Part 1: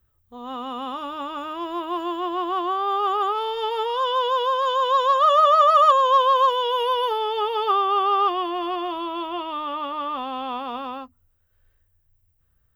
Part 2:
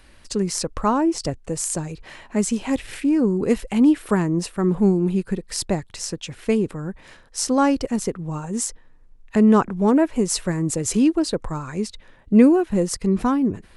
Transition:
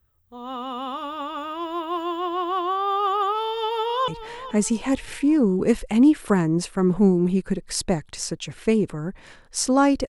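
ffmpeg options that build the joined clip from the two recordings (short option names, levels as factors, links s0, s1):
-filter_complex "[0:a]apad=whole_dur=10.08,atrim=end=10.08,atrim=end=4.082[s0];[1:a]atrim=start=1.888:end=7.89[s1];[s0][s1]acrossfade=d=0.004:c1=hsin:c2=hsin,asplit=2[s2][s3];[s3]afade=t=in:st=3.41:d=0.01,afade=t=out:st=4.08:d=0.01,aecho=0:1:430|860|1290|1720:0.211349|0.0845396|0.0338158|0.0135263[s4];[s2][s4]amix=inputs=2:normalize=0"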